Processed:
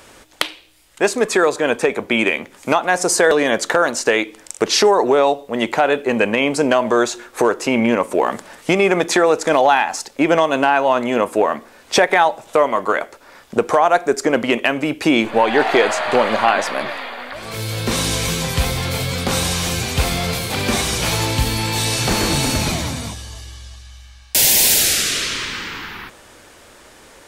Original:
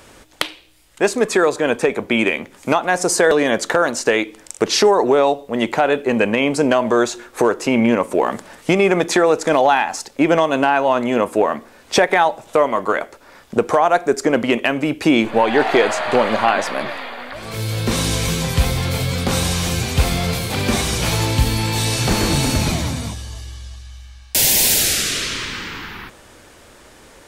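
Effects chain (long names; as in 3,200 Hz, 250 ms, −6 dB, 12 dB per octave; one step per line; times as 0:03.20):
low-shelf EQ 310 Hz −5 dB
level +1.5 dB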